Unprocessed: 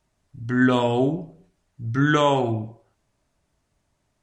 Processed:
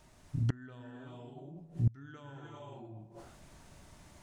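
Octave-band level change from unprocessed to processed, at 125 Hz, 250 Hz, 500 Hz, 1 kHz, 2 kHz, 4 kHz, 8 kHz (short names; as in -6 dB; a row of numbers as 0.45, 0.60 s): -8.0 dB, -21.5 dB, -27.0 dB, -27.5 dB, -27.5 dB, under -25 dB, n/a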